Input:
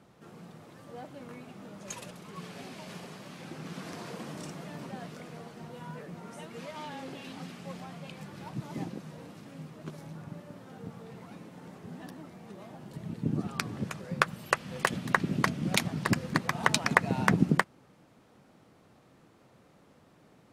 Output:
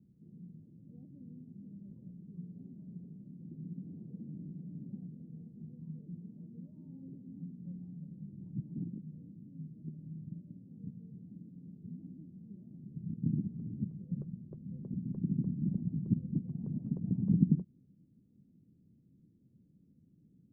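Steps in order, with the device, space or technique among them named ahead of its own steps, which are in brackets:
the neighbour's flat through the wall (low-pass filter 270 Hz 24 dB per octave; parametric band 180 Hz +4 dB 0.77 octaves)
level −3.5 dB

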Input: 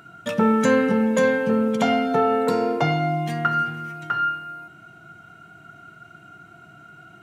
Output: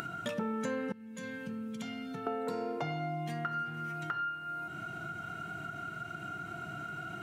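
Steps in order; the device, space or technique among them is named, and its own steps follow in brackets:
0:00.92–0:02.27: guitar amp tone stack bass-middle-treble 6-0-2
upward and downward compression (upward compression, threshold −33 dBFS; downward compressor 4 to 1, threshold −36 dBFS, peak gain reduction 18 dB)

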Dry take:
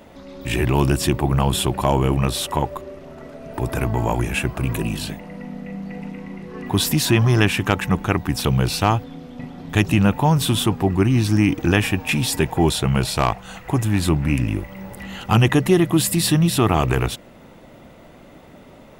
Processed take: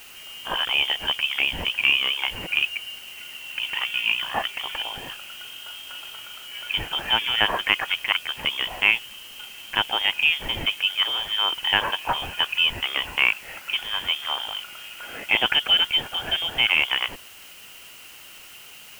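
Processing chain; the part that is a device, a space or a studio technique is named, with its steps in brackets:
scrambled radio voice (band-pass filter 400–3,000 Hz; voice inversion scrambler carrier 3,400 Hz; white noise bed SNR 21 dB)
level +1 dB

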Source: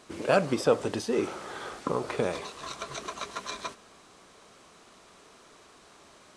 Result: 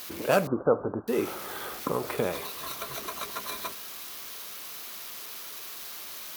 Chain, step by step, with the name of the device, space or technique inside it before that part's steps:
budget class-D amplifier (gap after every zero crossing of 0.069 ms; spike at every zero crossing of −27 dBFS)
0:00.47–0:01.08: Butterworth low-pass 1,500 Hz 96 dB per octave

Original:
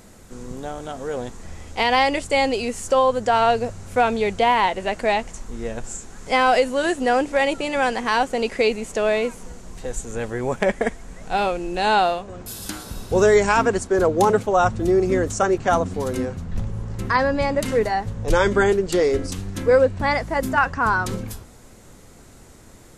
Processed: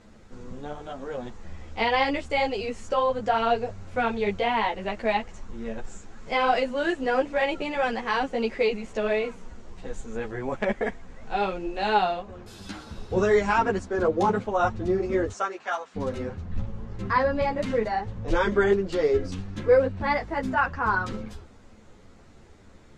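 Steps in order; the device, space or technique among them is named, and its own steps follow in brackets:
0:15.31–0:15.94: high-pass filter 510 Hz → 1,300 Hz 12 dB per octave
string-machine ensemble chorus (string-ensemble chorus; low-pass filter 4,200 Hz 12 dB per octave)
level −2 dB

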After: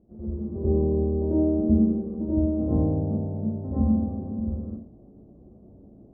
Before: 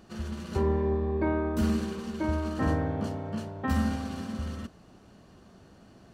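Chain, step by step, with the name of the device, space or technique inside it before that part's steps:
next room (low-pass filter 550 Hz 24 dB per octave; convolution reverb RT60 0.40 s, pre-delay 80 ms, DRR −10 dB)
level −5.5 dB

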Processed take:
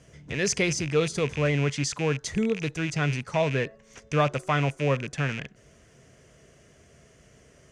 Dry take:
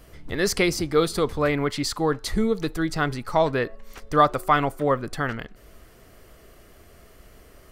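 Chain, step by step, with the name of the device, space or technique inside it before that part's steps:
car door speaker with a rattle (loose part that buzzes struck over −36 dBFS, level −20 dBFS; loudspeaker in its box 82–8,500 Hz, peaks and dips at 140 Hz +9 dB, 330 Hz −5 dB, 810 Hz −6 dB, 1,200 Hz −8 dB, 4,200 Hz −7 dB, 6,300 Hz +8 dB)
level −2.5 dB

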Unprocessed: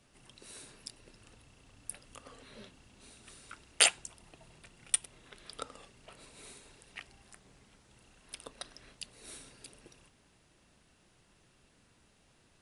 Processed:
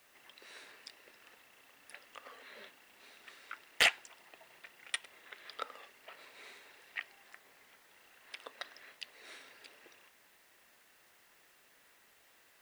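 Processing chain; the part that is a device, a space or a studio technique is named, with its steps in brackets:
drive-through speaker (band-pass filter 520–3,900 Hz; parametric band 1,900 Hz +7.5 dB 0.52 octaves; hard clipping −20 dBFS, distortion −9 dB; white noise bed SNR 24 dB)
level +1.5 dB

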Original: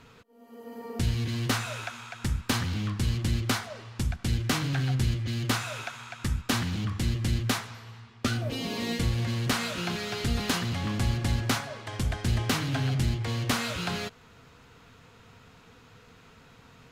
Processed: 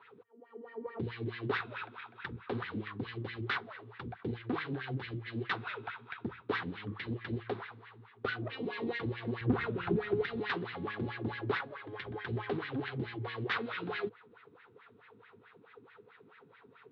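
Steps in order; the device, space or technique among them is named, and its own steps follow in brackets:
low-pass filter 4,500 Hz 24 dB per octave
wah-wah guitar rig (LFO wah 4.6 Hz 240–2,000 Hz, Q 4.5; tube saturation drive 33 dB, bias 0.4; loudspeaker in its box 100–4,400 Hz, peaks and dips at 110 Hz +8 dB, 250 Hz −6 dB, 410 Hz +8 dB, 620 Hz −9 dB, 3,700 Hz +6 dB)
0:09.41–0:10.24: RIAA equalisation playback
level +8 dB

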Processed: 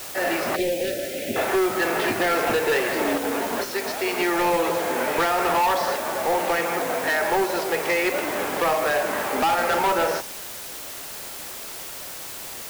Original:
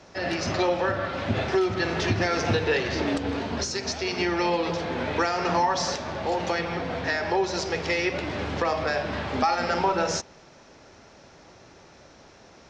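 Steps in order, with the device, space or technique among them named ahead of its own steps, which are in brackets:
aircraft radio (band-pass filter 370–2,400 Hz; hard clipping −24.5 dBFS, distortion −11 dB; white noise bed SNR 12 dB)
0:00.56–0:01.36: Chebyshev band-stop filter 480–2,500 Hz, order 2
level +7 dB

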